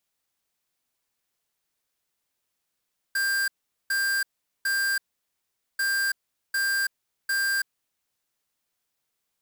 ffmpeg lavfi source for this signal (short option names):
-f lavfi -i "aevalsrc='0.0562*(2*lt(mod(1590*t,1),0.5)-1)*clip(min(mod(mod(t,2.64),0.75),0.33-mod(mod(t,2.64),0.75))/0.005,0,1)*lt(mod(t,2.64),2.25)':d=5.28:s=44100"